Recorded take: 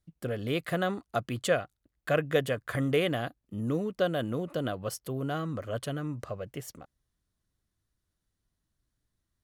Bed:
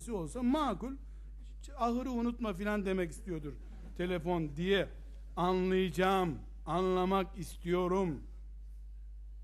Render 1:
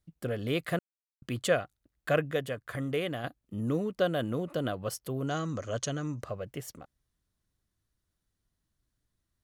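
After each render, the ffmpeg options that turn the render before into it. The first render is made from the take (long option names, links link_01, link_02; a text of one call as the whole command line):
ffmpeg -i in.wav -filter_complex "[0:a]asettb=1/sr,asplit=3[link_01][link_02][link_03];[link_01]atrim=end=5.274[link_04];[link_02]atrim=start=5.27:end=6.21,asetpts=PTS-STARTPTS,afade=type=in:duration=0.004:curve=qsin,afade=type=out:start_time=0.936:duration=0.004:curve=qsin,lowpass=frequency=6400:width_type=q:width=7.5[link_05];[link_03]atrim=start=6.206[link_06];[link_04][link_05]acrossfade=duration=0.004:curve1=hsin:curve2=qsin[link_07];[link_07][link_06]acrossfade=duration=0.004:curve1=qsin:curve2=hsin,asplit=5[link_08][link_09][link_10][link_11][link_12];[link_08]atrim=end=0.79,asetpts=PTS-STARTPTS,afade=type=out:start_time=0.786:duration=0.004:curve=hsin[link_13];[link_09]atrim=start=0.79:end=1.22,asetpts=PTS-STARTPTS,volume=0[link_14];[link_10]atrim=start=1.22:end=2.312,asetpts=PTS-STARTPTS,afade=type=in:duration=0.004:curve=hsin[link_15];[link_11]atrim=start=2.308:end=3.242,asetpts=PTS-STARTPTS,volume=-5dB[link_16];[link_12]atrim=start=3.238[link_17];[link_13][link_14][link_15]concat=n=3:v=0:a=1[link_18];[link_18][link_16]acrossfade=duration=0.004:curve1=hsin:curve2=hsin[link_19];[link_19][link_17]acrossfade=duration=0.004:curve1=hsin:curve2=hsin" out.wav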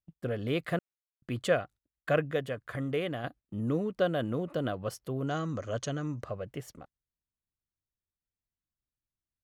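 ffmpeg -i in.wav -af "highshelf=frequency=4900:gain=-9,agate=range=-16dB:threshold=-50dB:ratio=16:detection=peak" out.wav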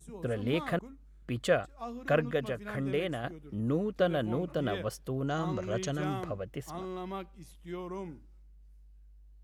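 ffmpeg -i in.wav -i bed.wav -filter_complex "[1:a]volume=-8dB[link_01];[0:a][link_01]amix=inputs=2:normalize=0" out.wav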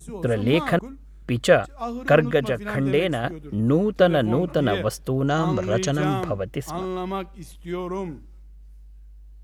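ffmpeg -i in.wav -af "volume=10.5dB" out.wav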